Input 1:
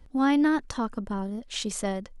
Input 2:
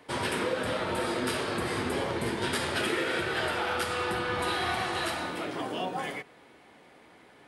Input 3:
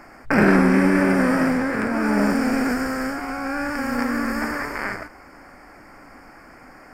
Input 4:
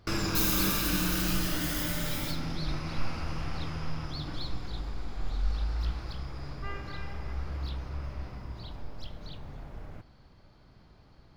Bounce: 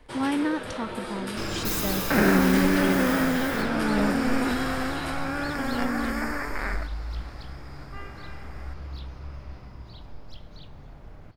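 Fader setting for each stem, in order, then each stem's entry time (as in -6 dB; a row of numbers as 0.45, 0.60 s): -4.0, -5.0, -4.5, -2.0 dB; 0.00, 0.00, 1.80, 1.30 s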